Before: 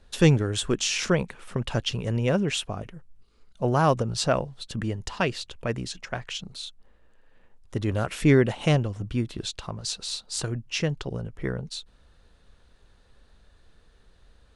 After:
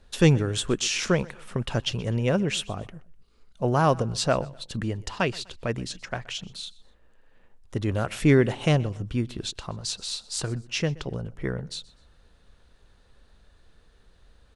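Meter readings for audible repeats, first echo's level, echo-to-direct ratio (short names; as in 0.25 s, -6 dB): 2, -22.0 dB, -21.5 dB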